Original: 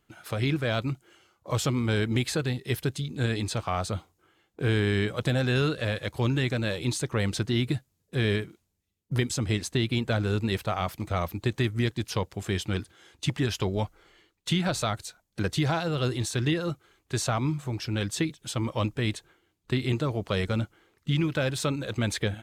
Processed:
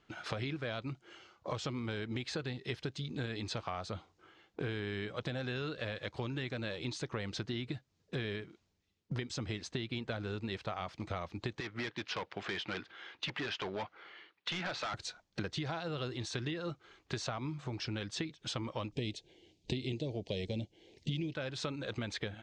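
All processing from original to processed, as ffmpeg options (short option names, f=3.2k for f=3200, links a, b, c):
-filter_complex "[0:a]asettb=1/sr,asplit=3[a][b][c];[a]atrim=end=11.604[d];[b]atrim=start=11.6:end=14.94,asetpts=PTS-STARTPTS,afade=t=in:d=0.004:c=qsin,afade=t=out:st=3.336:d=0.004:c=qsin,highpass=140,lowpass=2.5k,tiltshelf=f=770:g=-7,asoftclip=type=hard:threshold=-30dB[e];[c]atrim=start=14.936[f];[d][e]acrossfade=d=0.004:c1=hsin:c2=qsin[g];[g][f]acrossfade=d=0.004:c1=qsin:c2=hsin,asettb=1/sr,asplit=3[h][i][j];[h]atrim=end=18.924[k];[i]atrim=start=18.92:end=21.34,asetpts=PTS-STARTPTS,afade=t=in:d=0.004:c=qsin,afade=t=out:st=2.416:d=0.004:c=qsin,highshelf=f=7.8k:g=4.5,acontrast=83,asuperstop=centerf=1300:order=4:qfactor=0.69[l];[j]atrim=start=21.336[m];[k][l]acrossfade=d=0.004:c1=hsin:c2=qsin[n];[n][m]acrossfade=d=0.004:c1=qsin:c2=hsin,lowpass=f=5.8k:w=0.5412,lowpass=f=5.8k:w=1.3066,lowshelf=f=180:g=-6.5,acompressor=threshold=-40dB:ratio=6,volume=4dB"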